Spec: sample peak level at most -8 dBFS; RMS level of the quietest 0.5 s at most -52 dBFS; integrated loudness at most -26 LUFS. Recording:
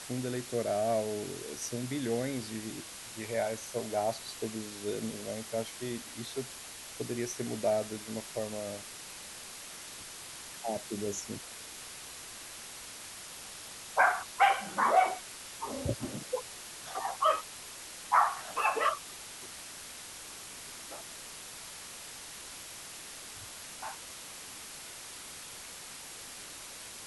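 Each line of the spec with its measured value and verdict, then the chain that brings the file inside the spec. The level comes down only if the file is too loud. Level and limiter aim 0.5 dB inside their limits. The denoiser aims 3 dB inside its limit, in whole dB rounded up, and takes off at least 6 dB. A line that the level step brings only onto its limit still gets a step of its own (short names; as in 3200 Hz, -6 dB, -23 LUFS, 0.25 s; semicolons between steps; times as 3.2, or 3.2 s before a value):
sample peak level -13.0 dBFS: OK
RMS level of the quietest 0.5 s -46 dBFS: fail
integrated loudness -35.5 LUFS: OK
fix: denoiser 9 dB, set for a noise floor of -46 dBFS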